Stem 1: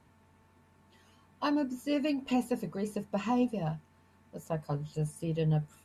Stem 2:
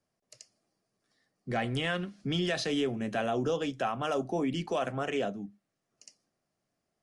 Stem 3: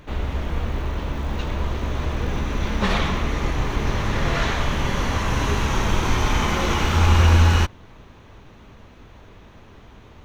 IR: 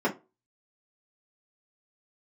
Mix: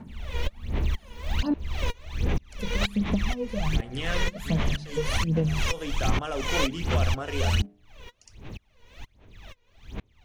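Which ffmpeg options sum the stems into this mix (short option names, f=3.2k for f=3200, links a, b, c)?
-filter_complex "[0:a]equalizer=f=210:t=o:w=0.57:g=15,acompressor=threshold=-29dB:ratio=6,volume=2.5dB,asplit=3[a][b][c];[a]atrim=end=1.54,asetpts=PTS-STARTPTS,afade=t=out:st=1.536:d=0.004:c=hsin[d];[b]atrim=start=1.54:end=2.59,asetpts=PTS-STARTPTS,volume=0[e];[c]atrim=start=2.59,asetpts=PTS-STARTPTS,afade=t=in:d=0.004:c=hsin[f];[d][e][f]concat=n=3:v=0:a=1,asplit=2[g][h];[1:a]bandreject=f=60.16:t=h:w=4,bandreject=f=120.32:t=h:w=4,bandreject=f=180.48:t=h:w=4,bandreject=f=240.64:t=h:w=4,bandreject=f=300.8:t=h:w=4,bandreject=f=360.96:t=h:w=4,bandreject=f=421.12:t=h:w=4,bandreject=f=481.28:t=h:w=4,bandreject=f=541.44:t=h:w=4,bandreject=f=601.6:t=h:w=4,bandreject=f=661.76:t=h:w=4,bandreject=f=721.92:t=h:w=4,bandreject=f=782.08:t=h:w=4,adelay=2200,volume=-1dB[i];[2:a]highshelf=f=1.8k:t=q:w=1.5:g=6,aeval=exprs='val(0)*pow(10,-34*if(lt(mod(-2.1*n/s,1),2*abs(-2.1)/1000),1-mod(-2.1*n/s,1)/(2*abs(-2.1)/1000),(mod(-2.1*n/s,1)-2*abs(-2.1)/1000)/(1-2*abs(-2.1)/1000))/20)':c=same,volume=0dB[j];[h]apad=whole_len=406619[k];[i][k]sidechaincompress=threshold=-45dB:ratio=8:attack=16:release=196[l];[g][j]amix=inputs=2:normalize=0,aphaser=in_gain=1:out_gain=1:delay=2.1:decay=0.79:speed=1.3:type=sinusoidal,acompressor=threshold=-21dB:ratio=8,volume=0dB[m];[l][m]amix=inputs=2:normalize=0"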